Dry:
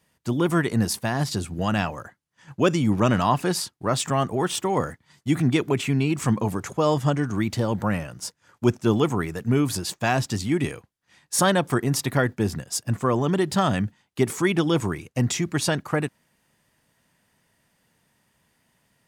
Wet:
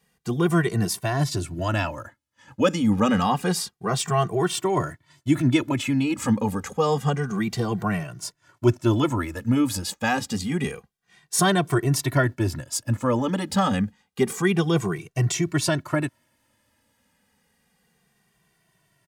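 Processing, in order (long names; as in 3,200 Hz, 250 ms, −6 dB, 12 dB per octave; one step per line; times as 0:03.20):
barber-pole flanger 2.1 ms −0.28 Hz
level +3 dB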